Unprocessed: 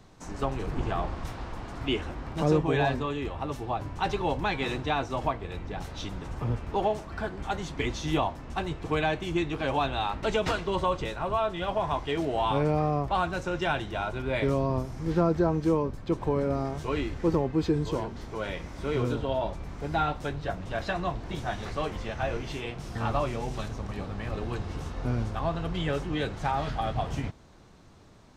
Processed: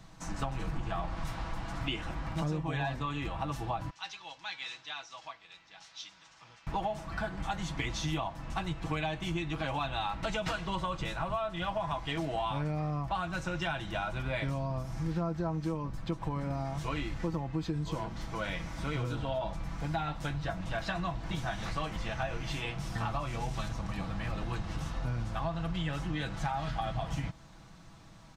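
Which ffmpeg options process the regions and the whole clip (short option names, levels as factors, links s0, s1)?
-filter_complex "[0:a]asettb=1/sr,asplit=3[s0][s1][s2];[s0]atrim=end=3.904[s3];[s1]atrim=start=3.9:end=6.67,asetpts=PTS-STARTPTS,afade=t=in:d=0.004:c=qsin,afade=t=out:st=2.766:d=0.004:c=qsin,lowpass=f=6000:w=0.5412,lowpass=f=6000:w=1.3066,aderivative[s4];[s2]atrim=start=6.666[s5];[s3][s4]acrossfade=d=0.004:c1=hsin:c2=qsin[s6];[s6][s5]acrossfade=d=0.004:c1=qsin:c2=hsin,equalizer=f=410:t=o:w=0.72:g=-12,aecho=1:1:6.1:0.49,acompressor=threshold=0.0251:ratio=5,volume=1.19"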